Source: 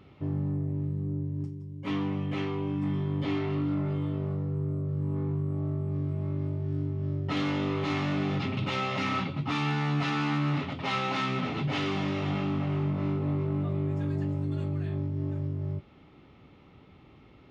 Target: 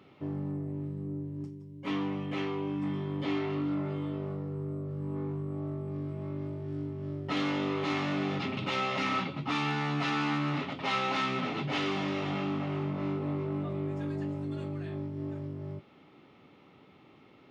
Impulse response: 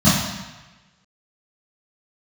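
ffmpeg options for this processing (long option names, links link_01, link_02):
-af "highpass=150,bass=frequency=250:gain=-3,treble=frequency=4000:gain=0"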